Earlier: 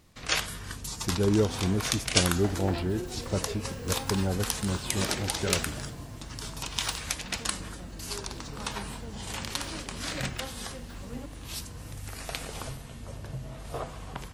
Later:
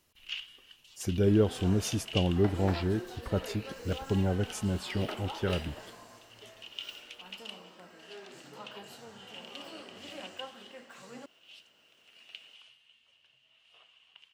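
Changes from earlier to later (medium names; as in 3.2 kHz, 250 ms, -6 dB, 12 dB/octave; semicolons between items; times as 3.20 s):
first sound: add band-pass filter 2.9 kHz, Q 11; second sound: add frequency weighting A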